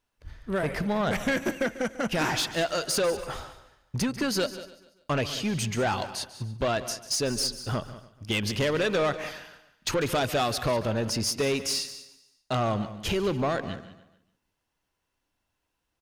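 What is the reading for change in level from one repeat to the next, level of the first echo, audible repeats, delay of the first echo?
no steady repeat, -16.5 dB, 5, 0.144 s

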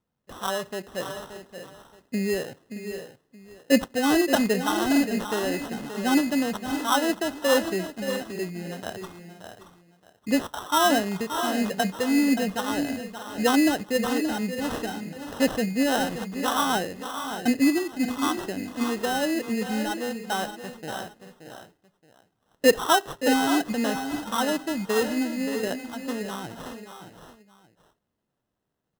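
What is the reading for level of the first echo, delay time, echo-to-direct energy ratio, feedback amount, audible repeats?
-10.0 dB, 0.576 s, -7.5 dB, no steady repeat, 3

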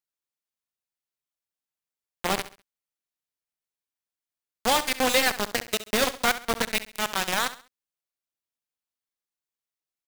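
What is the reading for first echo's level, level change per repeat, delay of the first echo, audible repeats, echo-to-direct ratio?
-14.0 dB, -9.5 dB, 67 ms, 3, -13.5 dB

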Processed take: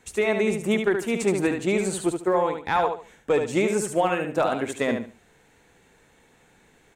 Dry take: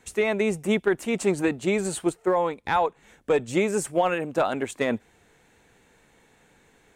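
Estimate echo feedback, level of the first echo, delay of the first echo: 24%, -6.0 dB, 73 ms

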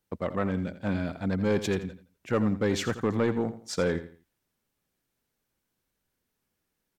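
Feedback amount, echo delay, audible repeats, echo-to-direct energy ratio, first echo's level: 29%, 84 ms, 3, -12.5 dB, -13.0 dB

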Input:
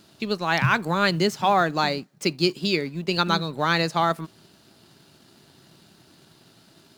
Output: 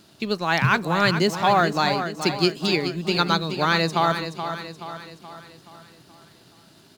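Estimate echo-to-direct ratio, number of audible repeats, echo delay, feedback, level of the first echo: -8.0 dB, 5, 0.426 s, 50%, -9.0 dB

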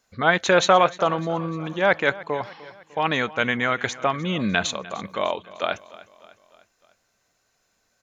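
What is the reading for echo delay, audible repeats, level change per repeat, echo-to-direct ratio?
0.301 s, 3, -5.5 dB, -17.5 dB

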